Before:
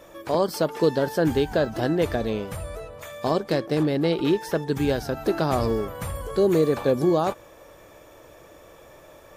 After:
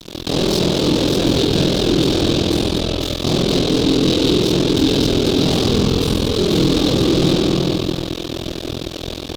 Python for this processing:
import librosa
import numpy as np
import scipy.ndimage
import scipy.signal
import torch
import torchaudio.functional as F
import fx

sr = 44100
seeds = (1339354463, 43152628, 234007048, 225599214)

y = fx.bin_compress(x, sr, power=0.6)
y = fx.rev_spring(y, sr, rt60_s=2.9, pass_ms=(31, 44), chirp_ms=70, drr_db=-3.5)
y = y * np.sin(2.0 * np.pi * 21.0 * np.arange(len(y)) / sr)
y = fx.fuzz(y, sr, gain_db=23.0, gate_db=-32.0)
y = fx.curve_eq(y, sr, hz=(300.0, 550.0, 1900.0, 3700.0, 10000.0), db=(0, -11, -15, 8, -6))
y = y * librosa.db_to_amplitude(4.5)